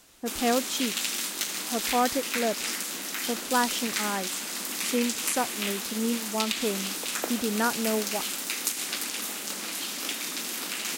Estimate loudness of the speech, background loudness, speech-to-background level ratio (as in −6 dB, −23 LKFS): −30.5 LKFS, −30.0 LKFS, −0.5 dB